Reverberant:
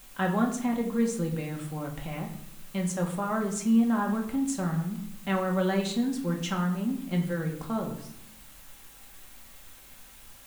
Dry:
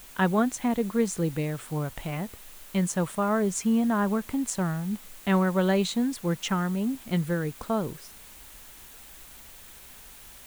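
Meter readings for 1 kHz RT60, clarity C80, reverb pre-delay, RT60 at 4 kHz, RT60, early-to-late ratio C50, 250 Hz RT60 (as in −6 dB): 0.70 s, 11.5 dB, 4 ms, 0.50 s, 0.75 s, 8.5 dB, 1.1 s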